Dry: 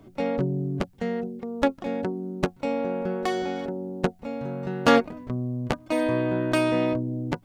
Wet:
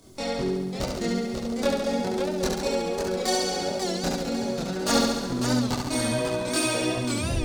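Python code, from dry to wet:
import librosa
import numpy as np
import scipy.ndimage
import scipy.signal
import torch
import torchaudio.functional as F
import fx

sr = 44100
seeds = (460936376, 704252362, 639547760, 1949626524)

y = fx.tape_stop_end(x, sr, length_s=0.33)
y = fx.band_shelf(y, sr, hz=6400.0, db=11.5, octaves=1.7)
y = fx.rider(y, sr, range_db=3, speed_s=0.5)
y = fx.high_shelf(y, sr, hz=3700.0, db=10.5)
y = 10.0 ** (-14.0 / 20.0) * np.tanh(y / 10.0 ** (-14.0 / 20.0))
y = fx.chorus_voices(y, sr, voices=4, hz=0.78, base_ms=25, depth_ms=2.1, mix_pct=55)
y = fx.room_flutter(y, sr, wall_m=11.9, rt60_s=1.2)
y = fx.echo_warbled(y, sr, ms=544, feedback_pct=34, rate_hz=2.8, cents=155, wet_db=-6.0)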